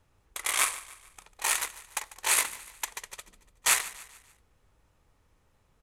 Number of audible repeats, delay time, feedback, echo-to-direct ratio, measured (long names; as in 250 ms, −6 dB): 3, 146 ms, 44%, −16.0 dB